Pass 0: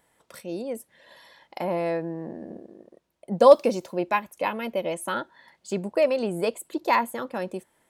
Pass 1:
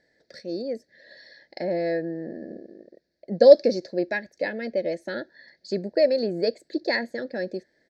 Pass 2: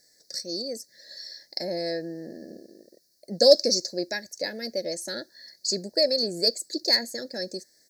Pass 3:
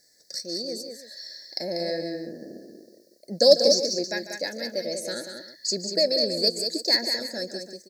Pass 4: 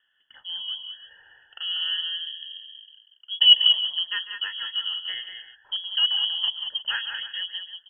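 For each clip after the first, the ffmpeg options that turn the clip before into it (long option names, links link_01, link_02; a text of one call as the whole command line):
ffmpeg -i in.wav -af "firequalizer=gain_entry='entry(120,0);entry(290,6);entry(610,6);entry(1100,-25);entry(1700,11);entry(2900,-13);entry(4400,14);entry(9500,-26)':delay=0.05:min_phase=1,volume=-4dB" out.wav
ffmpeg -i in.wav -af "aexciter=amount=13:drive=9.2:freq=4800,volume=-4.5dB" out.wav
ffmpeg -i in.wav -af "aecho=1:1:146|191|322:0.211|0.473|0.168" out.wav
ffmpeg -i in.wav -af "lowpass=frequency=3000:width_type=q:width=0.5098,lowpass=frequency=3000:width_type=q:width=0.6013,lowpass=frequency=3000:width_type=q:width=0.9,lowpass=frequency=3000:width_type=q:width=2.563,afreqshift=-3500,volume=1.5dB" out.wav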